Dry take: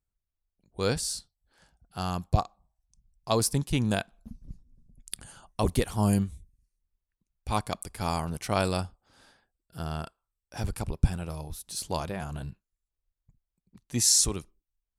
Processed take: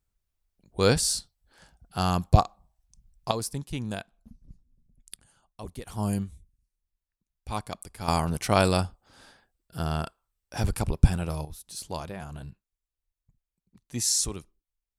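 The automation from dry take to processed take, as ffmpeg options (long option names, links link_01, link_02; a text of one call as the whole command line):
ffmpeg -i in.wav -af "asetnsamples=nb_out_samples=441:pad=0,asendcmd='3.31 volume volume -6.5dB;5.16 volume volume -14dB;5.87 volume volume -4dB;8.08 volume volume 5dB;11.45 volume volume -3.5dB',volume=6dB" out.wav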